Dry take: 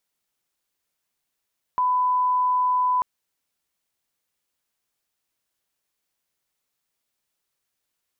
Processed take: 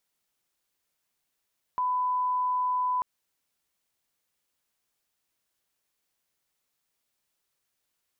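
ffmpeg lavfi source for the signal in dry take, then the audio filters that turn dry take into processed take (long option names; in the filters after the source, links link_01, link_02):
-f lavfi -i "sine=frequency=1000:duration=1.24:sample_rate=44100,volume=0.06dB"
-af "alimiter=limit=-24dB:level=0:latency=1:release=84"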